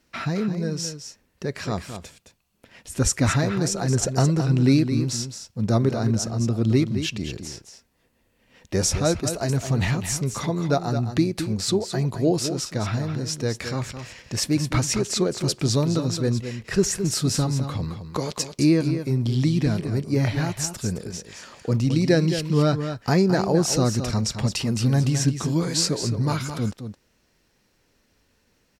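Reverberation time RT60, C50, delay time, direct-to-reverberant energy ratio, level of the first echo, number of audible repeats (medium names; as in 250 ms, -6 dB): no reverb, no reverb, 216 ms, no reverb, -9.0 dB, 1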